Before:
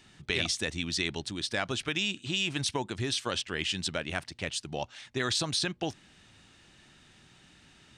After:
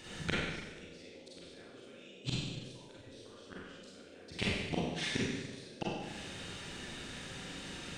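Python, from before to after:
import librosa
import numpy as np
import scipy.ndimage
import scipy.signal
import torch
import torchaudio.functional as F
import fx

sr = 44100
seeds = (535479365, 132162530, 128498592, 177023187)

y = fx.dynamic_eq(x, sr, hz=450.0, q=1.8, threshold_db=-48.0, ratio=4.0, max_db=-6)
y = fx.gate_flip(y, sr, shuts_db=-25.0, range_db=-38)
y = fx.dmg_noise_band(y, sr, seeds[0], low_hz=220.0, high_hz=560.0, level_db=-68.0)
y = fx.rev_schroeder(y, sr, rt60_s=1.2, comb_ms=32, drr_db=-7.0)
y = y * 10.0 ** (5.0 / 20.0)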